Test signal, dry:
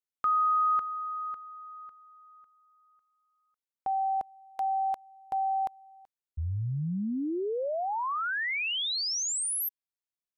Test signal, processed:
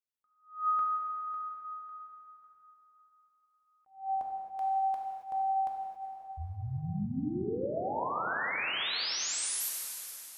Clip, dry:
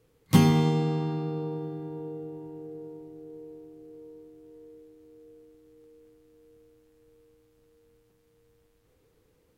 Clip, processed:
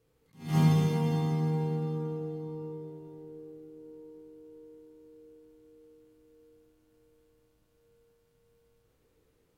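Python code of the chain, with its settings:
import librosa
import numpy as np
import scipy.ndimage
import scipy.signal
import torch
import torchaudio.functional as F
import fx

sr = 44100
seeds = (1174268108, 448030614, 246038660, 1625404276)

y = fx.rev_plate(x, sr, seeds[0], rt60_s=3.7, hf_ratio=0.85, predelay_ms=0, drr_db=-2.0)
y = fx.attack_slew(y, sr, db_per_s=160.0)
y = y * 10.0 ** (-6.5 / 20.0)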